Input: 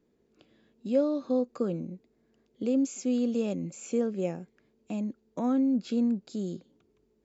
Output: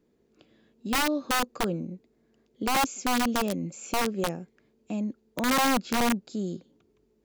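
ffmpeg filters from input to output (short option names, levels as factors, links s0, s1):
-af "aeval=exprs='(mod(11.9*val(0)+1,2)-1)/11.9':c=same,volume=1.26"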